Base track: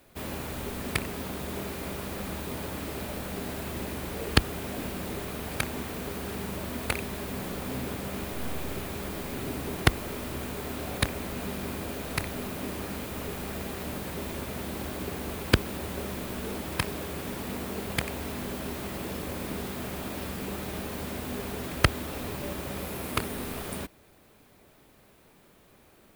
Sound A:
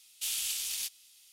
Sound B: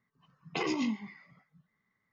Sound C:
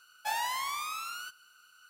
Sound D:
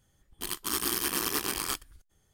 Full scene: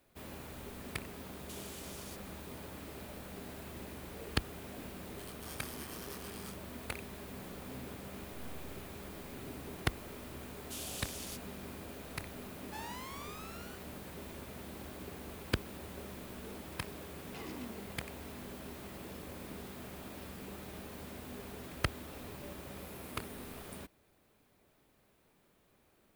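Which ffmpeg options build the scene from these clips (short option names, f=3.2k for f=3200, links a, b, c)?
-filter_complex "[1:a]asplit=2[a][b];[0:a]volume=-11.5dB[c];[a]acompressor=threshold=-37dB:ratio=6:attack=3.1:release=390:knee=1:detection=peak[d];[4:a]flanger=delay=22.5:depth=5:speed=2.2[e];[2:a]volume=31.5dB,asoftclip=hard,volume=-31.5dB[f];[d]atrim=end=1.32,asetpts=PTS-STARTPTS,volume=-9.5dB,afade=t=in:d=0.004:c=hsin,afade=t=out:st=1.316:d=0.004:c=hsin,adelay=1280[g];[e]atrim=end=2.33,asetpts=PTS-STARTPTS,volume=-15.5dB,afade=t=in:d=0.004:c=hsin,afade=t=out:st=2.326:d=0.004:c=hsin,adelay=4760[h];[b]atrim=end=1.32,asetpts=PTS-STARTPTS,volume=-11dB,afade=t=in:d=0.004:c=hsin,afade=t=out:st=1.316:d=0.004:c=hsin,adelay=10490[i];[3:a]atrim=end=1.89,asetpts=PTS-STARTPTS,volume=-13.5dB,afade=t=in:d=0.004:c=hsin,afade=t=out:st=1.886:d=0.004:c=hsin,adelay=12470[j];[f]atrim=end=2.12,asetpts=PTS-STARTPTS,volume=-13dB,afade=t=in:d=0.004:c=hsin,afade=t=out:st=2.116:d=0.004:c=hsin,adelay=16790[k];[c][g][h][i][j][k]amix=inputs=6:normalize=0"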